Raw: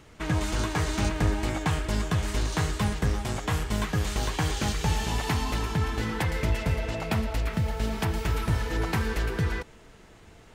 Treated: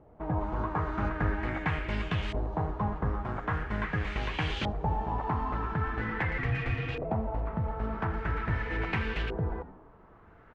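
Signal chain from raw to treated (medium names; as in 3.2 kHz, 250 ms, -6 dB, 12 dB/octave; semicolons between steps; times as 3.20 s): frequency-shifting echo 82 ms, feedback 49%, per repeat -120 Hz, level -15.5 dB; LFO low-pass saw up 0.43 Hz 690–3100 Hz; 6.38–7.05 s: frequency shift -180 Hz; trim -5 dB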